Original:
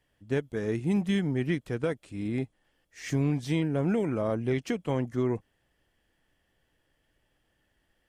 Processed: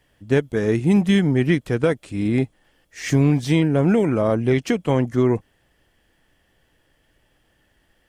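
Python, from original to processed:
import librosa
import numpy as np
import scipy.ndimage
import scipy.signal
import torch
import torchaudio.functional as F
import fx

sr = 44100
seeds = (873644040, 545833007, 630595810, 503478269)

p1 = fx.rider(x, sr, range_db=10, speed_s=2.0)
p2 = x + (p1 * 10.0 ** (-0.5 / 20.0))
p3 = fx.quant_dither(p2, sr, seeds[0], bits=12, dither='triangular', at=(3.02, 3.49))
y = p3 * 10.0 ** (4.0 / 20.0)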